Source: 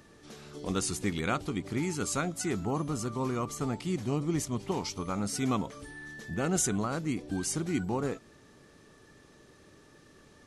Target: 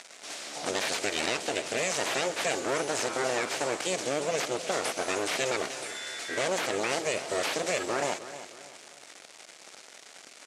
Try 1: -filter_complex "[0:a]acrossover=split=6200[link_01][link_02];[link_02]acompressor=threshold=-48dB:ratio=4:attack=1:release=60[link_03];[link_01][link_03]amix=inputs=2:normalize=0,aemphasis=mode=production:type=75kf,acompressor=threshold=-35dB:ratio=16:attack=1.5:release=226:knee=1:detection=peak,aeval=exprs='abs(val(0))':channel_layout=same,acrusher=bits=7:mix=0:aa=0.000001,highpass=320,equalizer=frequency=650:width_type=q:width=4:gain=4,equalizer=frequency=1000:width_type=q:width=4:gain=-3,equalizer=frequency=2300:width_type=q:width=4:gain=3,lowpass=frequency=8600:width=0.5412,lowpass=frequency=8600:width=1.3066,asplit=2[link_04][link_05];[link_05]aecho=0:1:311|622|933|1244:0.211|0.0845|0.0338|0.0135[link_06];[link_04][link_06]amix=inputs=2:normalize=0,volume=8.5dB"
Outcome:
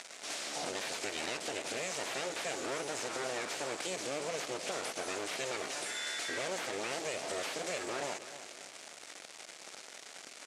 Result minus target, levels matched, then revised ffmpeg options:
downward compressor: peak gain reduction +9.5 dB
-filter_complex "[0:a]acrossover=split=6200[link_01][link_02];[link_02]acompressor=threshold=-48dB:ratio=4:attack=1:release=60[link_03];[link_01][link_03]amix=inputs=2:normalize=0,aemphasis=mode=production:type=75kf,acompressor=threshold=-25dB:ratio=16:attack=1.5:release=226:knee=1:detection=peak,aeval=exprs='abs(val(0))':channel_layout=same,acrusher=bits=7:mix=0:aa=0.000001,highpass=320,equalizer=frequency=650:width_type=q:width=4:gain=4,equalizer=frequency=1000:width_type=q:width=4:gain=-3,equalizer=frequency=2300:width_type=q:width=4:gain=3,lowpass=frequency=8600:width=0.5412,lowpass=frequency=8600:width=1.3066,asplit=2[link_04][link_05];[link_05]aecho=0:1:311|622|933|1244:0.211|0.0845|0.0338|0.0135[link_06];[link_04][link_06]amix=inputs=2:normalize=0,volume=8.5dB"

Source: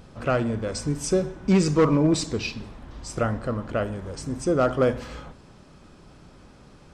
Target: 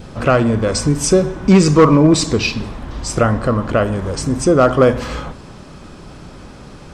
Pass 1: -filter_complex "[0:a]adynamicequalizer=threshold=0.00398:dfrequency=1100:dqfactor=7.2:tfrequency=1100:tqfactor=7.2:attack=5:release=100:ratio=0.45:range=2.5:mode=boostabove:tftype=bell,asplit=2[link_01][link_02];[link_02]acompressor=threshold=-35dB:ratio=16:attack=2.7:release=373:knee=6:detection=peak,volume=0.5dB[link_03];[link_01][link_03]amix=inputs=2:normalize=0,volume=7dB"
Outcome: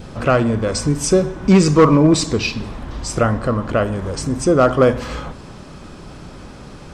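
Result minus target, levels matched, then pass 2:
downward compressor: peak gain reduction +10 dB
-filter_complex "[0:a]adynamicequalizer=threshold=0.00398:dfrequency=1100:dqfactor=7.2:tfrequency=1100:tqfactor=7.2:attack=5:release=100:ratio=0.45:range=2.5:mode=boostabove:tftype=bell,asplit=2[link_01][link_02];[link_02]acompressor=threshold=-24.5dB:ratio=16:attack=2.7:release=373:knee=6:detection=peak,volume=0.5dB[link_03];[link_01][link_03]amix=inputs=2:normalize=0,volume=7dB"

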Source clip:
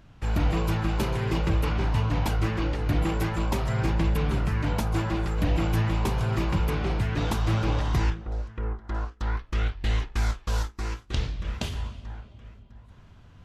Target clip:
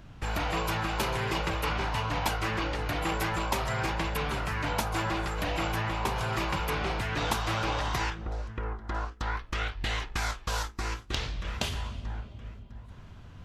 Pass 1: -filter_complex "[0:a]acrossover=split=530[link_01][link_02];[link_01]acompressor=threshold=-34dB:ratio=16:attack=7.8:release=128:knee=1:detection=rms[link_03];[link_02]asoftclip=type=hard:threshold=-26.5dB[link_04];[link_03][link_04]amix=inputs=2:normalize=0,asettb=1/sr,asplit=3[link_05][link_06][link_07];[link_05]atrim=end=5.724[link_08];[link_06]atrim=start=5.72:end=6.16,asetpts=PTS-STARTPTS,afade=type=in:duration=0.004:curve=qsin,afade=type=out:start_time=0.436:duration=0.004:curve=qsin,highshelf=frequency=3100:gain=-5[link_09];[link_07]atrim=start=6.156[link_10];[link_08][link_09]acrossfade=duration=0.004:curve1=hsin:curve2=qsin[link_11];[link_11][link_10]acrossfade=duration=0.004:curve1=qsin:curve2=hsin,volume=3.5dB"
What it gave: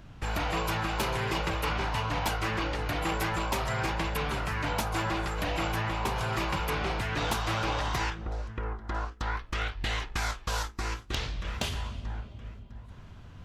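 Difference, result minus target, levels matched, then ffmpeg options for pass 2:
hard clipping: distortion +21 dB
-filter_complex "[0:a]acrossover=split=530[link_01][link_02];[link_01]acompressor=threshold=-34dB:ratio=16:attack=7.8:release=128:knee=1:detection=rms[link_03];[link_02]asoftclip=type=hard:threshold=-19dB[link_04];[link_03][link_04]amix=inputs=2:normalize=0,asettb=1/sr,asplit=3[link_05][link_06][link_07];[link_05]atrim=end=5.724[link_08];[link_06]atrim=start=5.72:end=6.16,asetpts=PTS-STARTPTS,afade=type=in:duration=0.004:curve=qsin,afade=type=out:start_time=0.436:duration=0.004:curve=qsin,highshelf=frequency=3100:gain=-5[link_09];[link_07]atrim=start=6.156[link_10];[link_08][link_09]acrossfade=duration=0.004:curve1=hsin:curve2=qsin[link_11];[link_11][link_10]acrossfade=duration=0.004:curve1=qsin:curve2=hsin,volume=3.5dB"

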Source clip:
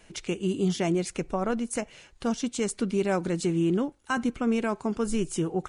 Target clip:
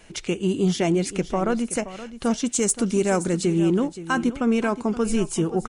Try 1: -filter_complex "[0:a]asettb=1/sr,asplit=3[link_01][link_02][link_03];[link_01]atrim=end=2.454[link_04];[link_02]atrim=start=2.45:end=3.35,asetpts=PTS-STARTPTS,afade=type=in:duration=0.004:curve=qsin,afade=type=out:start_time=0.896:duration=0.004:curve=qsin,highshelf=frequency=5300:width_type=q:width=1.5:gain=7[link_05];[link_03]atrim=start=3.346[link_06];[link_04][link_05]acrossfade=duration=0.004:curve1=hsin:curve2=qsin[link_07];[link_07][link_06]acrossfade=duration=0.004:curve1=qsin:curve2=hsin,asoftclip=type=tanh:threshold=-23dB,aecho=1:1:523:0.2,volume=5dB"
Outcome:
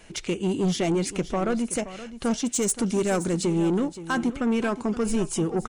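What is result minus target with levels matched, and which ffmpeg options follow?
soft clipping: distortion +16 dB
-filter_complex "[0:a]asettb=1/sr,asplit=3[link_01][link_02][link_03];[link_01]atrim=end=2.454[link_04];[link_02]atrim=start=2.45:end=3.35,asetpts=PTS-STARTPTS,afade=type=in:duration=0.004:curve=qsin,afade=type=out:start_time=0.896:duration=0.004:curve=qsin,highshelf=frequency=5300:width_type=q:width=1.5:gain=7[link_05];[link_03]atrim=start=3.346[link_06];[link_04][link_05]acrossfade=duration=0.004:curve1=hsin:curve2=qsin[link_07];[link_07][link_06]acrossfade=duration=0.004:curve1=qsin:curve2=hsin,asoftclip=type=tanh:threshold=-12.5dB,aecho=1:1:523:0.2,volume=5dB"

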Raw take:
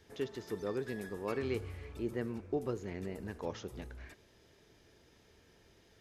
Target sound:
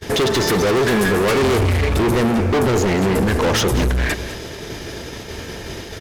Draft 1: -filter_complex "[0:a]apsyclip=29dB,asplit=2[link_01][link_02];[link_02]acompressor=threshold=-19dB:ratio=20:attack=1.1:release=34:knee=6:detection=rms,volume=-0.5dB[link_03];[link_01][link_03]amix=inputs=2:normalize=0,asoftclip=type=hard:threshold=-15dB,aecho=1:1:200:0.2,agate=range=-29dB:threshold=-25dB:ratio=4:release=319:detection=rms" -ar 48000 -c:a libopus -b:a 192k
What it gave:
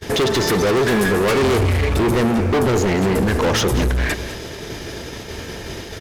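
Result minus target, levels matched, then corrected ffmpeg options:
downward compressor: peak gain reduction +7 dB
-filter_complex "[0:a]apsyclip=29dB,asplit=2[link_01][link_02];[link_02]acompressor=threshold=-11.5dB:ratio=20:attack=1.1:release=34:knee=6:detection=rms,volume=-0.5dB[link_03];[link_01][link_03]amix=inputs=2:normalize=0,asoftclip=type=hard:threshold=-15dB,aecho=1:1:200:0.2,agate=range=-29dB:threshold=-25dB:ratio=4:release=319:detection=rms" -ar 48000 -c:a libopus -b:a 192k

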